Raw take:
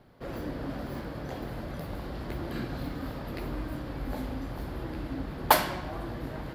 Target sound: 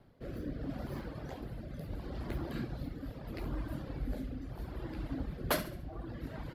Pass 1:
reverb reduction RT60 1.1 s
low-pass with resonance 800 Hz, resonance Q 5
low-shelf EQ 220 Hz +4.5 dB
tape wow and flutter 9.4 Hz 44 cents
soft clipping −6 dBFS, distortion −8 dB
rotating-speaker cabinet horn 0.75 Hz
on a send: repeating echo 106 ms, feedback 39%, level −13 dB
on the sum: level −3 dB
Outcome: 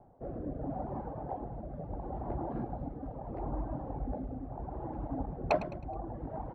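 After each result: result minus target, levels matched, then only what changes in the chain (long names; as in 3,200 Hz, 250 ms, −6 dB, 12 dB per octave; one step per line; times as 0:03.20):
echo 36 ms late; 1,000 Hz band +6.0 dB
change: repeating echo 70 ms, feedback 39%, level −13 dB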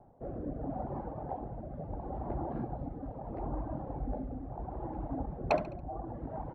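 1,000 Hz band +6.0 dB
remove: low-pass with resonance 800 Hz, resonance Q 5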